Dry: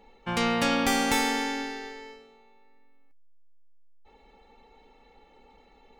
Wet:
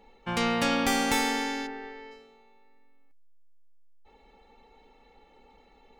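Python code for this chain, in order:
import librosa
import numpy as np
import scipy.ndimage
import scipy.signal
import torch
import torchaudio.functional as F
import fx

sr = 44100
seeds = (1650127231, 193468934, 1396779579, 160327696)

y = fx.lowpass(x, sr, hz=fx.line((1.66, 1700.0), (2.1, 3600.0)), slope=12, at=(1.66, 2.1), fade=0.02)
y = F.gain(torch.from_numpy(y), -1.0).numpy()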